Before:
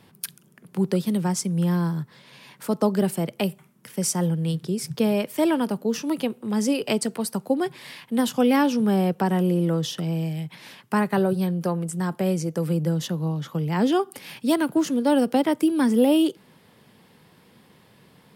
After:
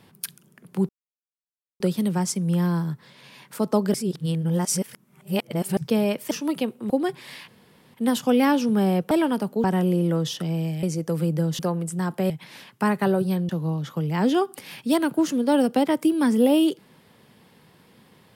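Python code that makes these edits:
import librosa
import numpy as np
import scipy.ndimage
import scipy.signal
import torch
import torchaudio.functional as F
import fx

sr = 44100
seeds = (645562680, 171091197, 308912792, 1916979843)

y = fx.edit(x, sr, fx.insert_silence(at_s=0.89, length_s=0.91),
    fx.reverse_span(start_s=3.03, length_s=1.83),
    fx.move(start_s=5.4, length_s=0.53, to_s=9.22),
    fx.cut(start_s=6.52, length_s=0.95),
    fx.insert_room_tone(at_s=8.05, length_s=0.46),
    fx.swap(start_s=10.41, length_s=1.19, other_s=12.31, other_length_s=0.76), tone=tone)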